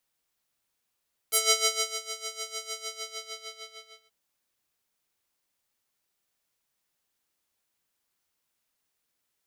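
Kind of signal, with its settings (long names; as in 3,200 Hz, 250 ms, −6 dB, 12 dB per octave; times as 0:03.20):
subtractive patch with tremolo A4, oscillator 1 square, oscillator 2 triangle, interval +7 semitones, oscillator 2 level −3 dB, sub −29.5 dB, noise −22 dB, filter bandpass, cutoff 3,700 Hz, Q 1.4, filter envelope 2 octaves, filter decay 0.10 s, filter sustain 35%, attack 13 ms, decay 0.66 s, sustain −16 dB, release 1.35 s, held 1.43 s, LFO 6.6 Hz, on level 14 dB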